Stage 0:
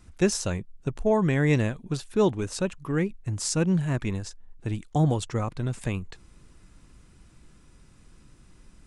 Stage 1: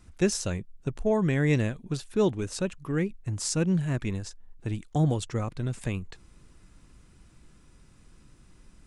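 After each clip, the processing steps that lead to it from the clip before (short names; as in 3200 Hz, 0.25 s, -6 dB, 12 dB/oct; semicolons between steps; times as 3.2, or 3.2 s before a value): dynamic EQ 940 Hz, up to -4 dB, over -44 dBFS, Q 1.5; gain -1.5 dB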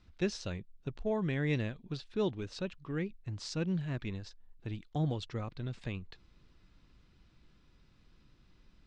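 ladder low-pass 5000 Hz, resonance 40%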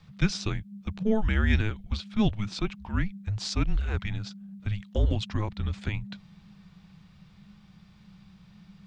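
frequency shift -210 Hz; gain +9 dB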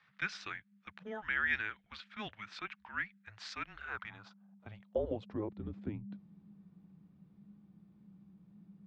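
band-pass sweep 1700 Hz -> 290 Hz, 3.66–5.78; gain +2 dB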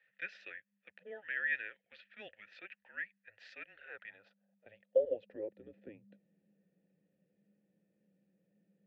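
vowel filter e; gain +7 dB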